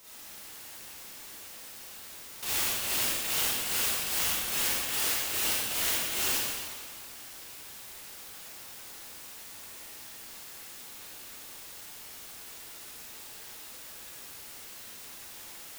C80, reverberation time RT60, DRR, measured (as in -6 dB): -2.5 dB, 1.9 s, -10.0 dB